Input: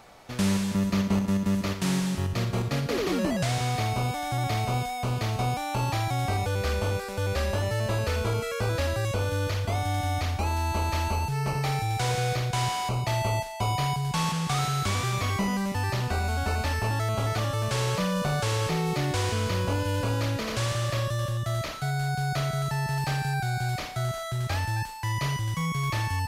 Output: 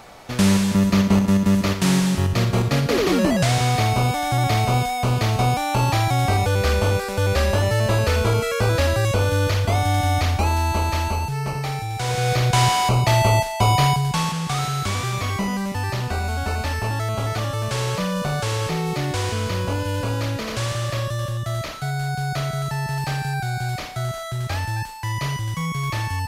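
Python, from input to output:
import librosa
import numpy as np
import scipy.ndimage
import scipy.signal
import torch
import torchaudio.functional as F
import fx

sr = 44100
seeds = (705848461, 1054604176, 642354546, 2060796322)

y = fx.gain(x, sr, db=fx.line((10.37, 8.0), (11.92, 0.0), (12.48, 10.0), (13.86, 10.0), (14.31, 3.0)))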